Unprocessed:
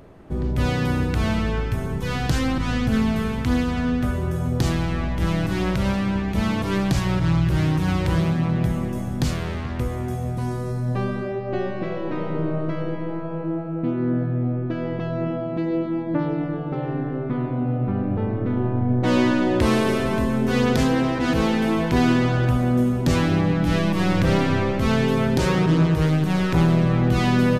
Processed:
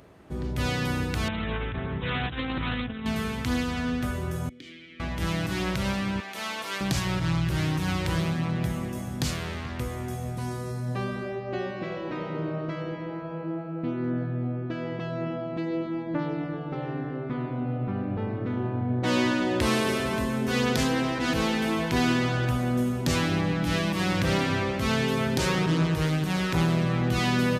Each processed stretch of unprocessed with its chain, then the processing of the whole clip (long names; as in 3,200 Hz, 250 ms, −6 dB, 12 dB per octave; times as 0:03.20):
0:01.28–0:03.06: compressor whose output falls as the input rises −23 dBFS, ratio −0.5 + linear-phase brick-wall low-pass 3,900 Hz + highs frequency-modulated by the lows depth 0.17 ms
0:04.49–0:05.00: formant filter i + low shelf with overshoot 330 Hz −7.5 dB, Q 1.5
0:06.20–0:06.81: Bessel high-pass filter 700 Hz + double-tracking delay 32 ms −11 dB
whole clip: high-pass filter 50 Hz; tilt shelving filter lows −4 dB, about 1,400 Hz; level −2.5 dB